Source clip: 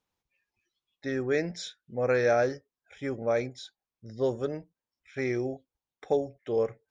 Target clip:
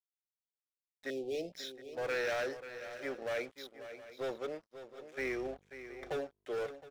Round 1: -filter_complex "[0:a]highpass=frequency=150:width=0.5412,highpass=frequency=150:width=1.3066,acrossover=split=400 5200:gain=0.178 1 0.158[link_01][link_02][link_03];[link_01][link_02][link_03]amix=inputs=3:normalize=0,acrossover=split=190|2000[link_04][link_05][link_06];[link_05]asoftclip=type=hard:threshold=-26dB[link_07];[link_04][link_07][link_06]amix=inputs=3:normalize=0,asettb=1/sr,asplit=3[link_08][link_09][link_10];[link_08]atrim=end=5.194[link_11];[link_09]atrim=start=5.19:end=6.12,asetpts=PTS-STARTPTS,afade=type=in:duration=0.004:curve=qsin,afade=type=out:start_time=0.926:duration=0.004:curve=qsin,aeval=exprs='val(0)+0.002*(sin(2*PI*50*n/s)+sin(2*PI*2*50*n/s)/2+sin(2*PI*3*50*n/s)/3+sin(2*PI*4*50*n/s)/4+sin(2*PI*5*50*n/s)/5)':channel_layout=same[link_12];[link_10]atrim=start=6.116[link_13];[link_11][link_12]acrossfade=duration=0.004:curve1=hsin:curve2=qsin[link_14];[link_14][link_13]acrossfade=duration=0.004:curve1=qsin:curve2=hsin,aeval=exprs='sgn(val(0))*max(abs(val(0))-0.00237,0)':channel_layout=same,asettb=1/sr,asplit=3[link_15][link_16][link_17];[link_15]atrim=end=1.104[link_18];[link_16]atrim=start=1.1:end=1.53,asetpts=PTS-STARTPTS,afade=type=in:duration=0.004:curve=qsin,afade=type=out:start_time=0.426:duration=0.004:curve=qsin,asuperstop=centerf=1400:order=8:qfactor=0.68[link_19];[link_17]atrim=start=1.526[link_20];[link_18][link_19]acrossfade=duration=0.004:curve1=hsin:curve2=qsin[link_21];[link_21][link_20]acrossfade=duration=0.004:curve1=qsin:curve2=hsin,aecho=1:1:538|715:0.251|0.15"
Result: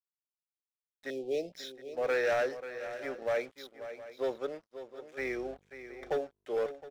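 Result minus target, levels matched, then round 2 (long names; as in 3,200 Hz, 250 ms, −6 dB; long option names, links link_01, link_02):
hard clipping: distortion −6 dB
-filter_complex "[0:a]highpass=frequency=150:width=0.5412,highpass=frequency=150:width=1.3066,acrossover=split=400 5200:gain=0.178 1 0.158[link_01][link_02][link_03];[link_01][link_02][link_03]amix=inputs=3:normalize=0,acrossover=split=190|2000[link_04][link_05][link_06];[link_05]asoftclip=type=hard:threshold=-33.5dB[link_07];[link_04][link_07][link_06]amix=inputs=3:normalize=0,asettb=1/sr,asplit=3[link_08][link_09][link_10];[link_08]atrim=end=5.194[link_11];[link_09]atrim=start=5.19:end=6.12,asetpts=PTS-STARTPTS,afade=type=in:duration=0.004:curve=qsin,afade=type=out:start_time=0.926:duration=0.004:curve=qsin,aeval=exprs='val(0)+0.002*(sin(2*PI*50*n/s)+sin(2*PI*2*50*n/s)/2+sin(2*PI*3*50*n/s)/3+sin(2*PI*4*50*n/s)/4+sin(2*PI*5*50*n/s)/5)':channel_layout=same[link_12];[link_10]atrim=start=6.116[link_13];[link_11][link_12]acrossfade=duration=0.004:curve1=hsin:curve2=qsin[link_14];[link_14][link_13]acrossfade=duration=0.004:curve1=qsin:curve2=hsin,aeval=exprs='sgn(val(0))*max(abs(val(0))-0.00237,0)':channel_layout=same,asettb=1/sr,asplit=3[link_15][link_16][link_17];[link_15]atrim=end=1.104[link_18];[link_16]atrim=start=1.1:end=1.53,asetpts=PTS-STARTPTS,afade=type=in:duration=0.004:curve=qsin,afade=type=out:start_time=0.426:duration=0.004:curve=qsin,asuperstop=centerf=1400:order=8:qfactor=0.68[link_19];[link_17]atrim=start=1.526[link_20];[link_18][link_19]acrossfade=duration=0.004:curve1=hsin:curve2=qsin[link_21];[link_21][link_20]acrossfade=duration=0.004:curve1=qsin:curve2=hsin,aecho=1:1:538|715:0.251|0.15"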